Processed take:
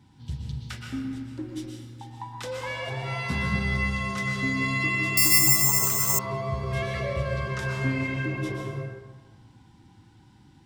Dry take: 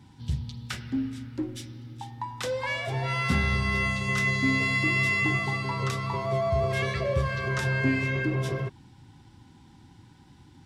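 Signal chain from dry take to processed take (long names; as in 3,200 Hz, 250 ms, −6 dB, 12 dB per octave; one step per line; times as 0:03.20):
dense smooth reverb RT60 1.3 s, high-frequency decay 0.6×, pre-delay 105 ms, DRR 0.5 dB
0:05.17–0:06.19: bad sample-rate conversion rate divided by 6×, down filtered, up zero stuff
level −4.5 dB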